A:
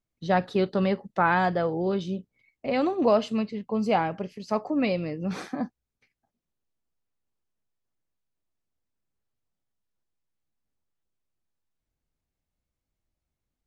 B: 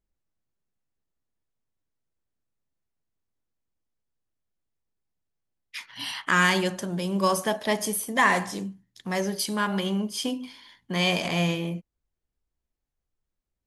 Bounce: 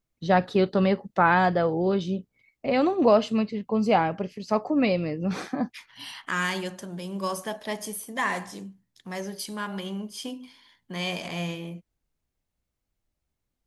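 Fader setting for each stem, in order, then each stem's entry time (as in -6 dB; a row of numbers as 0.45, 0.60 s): +2.5, -6.5 dB; 0.00, 0.00 s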